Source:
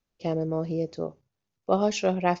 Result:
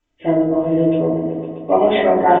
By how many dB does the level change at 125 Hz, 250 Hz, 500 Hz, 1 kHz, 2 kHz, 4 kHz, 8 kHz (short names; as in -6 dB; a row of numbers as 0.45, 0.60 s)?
+6.5 dB, +12.5 dB, +11.5 dB, +12.5 dB, +10.5 dB, +6.5 dB, n/a